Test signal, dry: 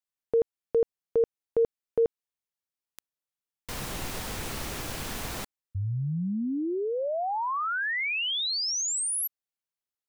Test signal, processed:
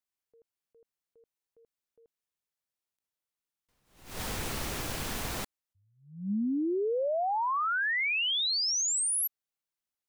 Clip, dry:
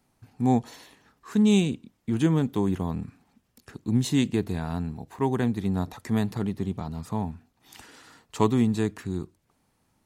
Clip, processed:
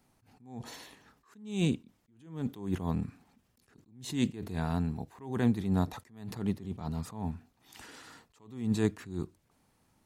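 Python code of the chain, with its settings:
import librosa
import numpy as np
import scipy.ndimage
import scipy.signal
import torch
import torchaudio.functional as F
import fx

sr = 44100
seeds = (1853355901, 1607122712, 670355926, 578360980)

y = fx.attack_slew(x, sr, db_per_s=110.0)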